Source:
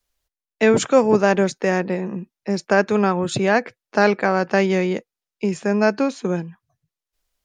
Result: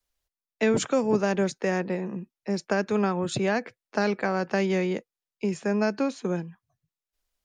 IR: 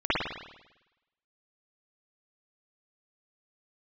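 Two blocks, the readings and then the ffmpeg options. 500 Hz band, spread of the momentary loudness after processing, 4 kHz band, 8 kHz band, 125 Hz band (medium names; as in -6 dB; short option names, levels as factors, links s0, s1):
-7.5 dB, 8 LU, -6.0 dB, -5.5 dB, -5.5 dB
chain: -filter_complex "[0:a]acrossover=split=340|3000[s0][s1][s2];[s1]acompressor=threshold=0.126:ratio=6[s3];[s0][s3][s2]amix=inputs=3:normalize=0,volume=0.531"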